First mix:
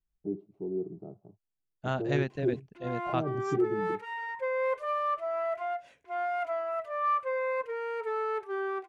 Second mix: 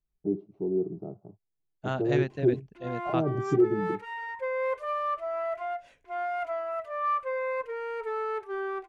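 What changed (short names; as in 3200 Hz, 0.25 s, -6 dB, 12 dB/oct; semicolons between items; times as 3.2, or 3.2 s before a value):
first voice +5.5 dB; background: remove HPF 100 Hz 12 dB/oct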